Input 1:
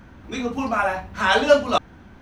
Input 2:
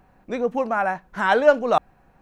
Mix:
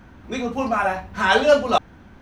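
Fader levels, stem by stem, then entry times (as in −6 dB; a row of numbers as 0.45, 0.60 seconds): −0.5, −4.0 decibels; 0.00, 0.00 seconds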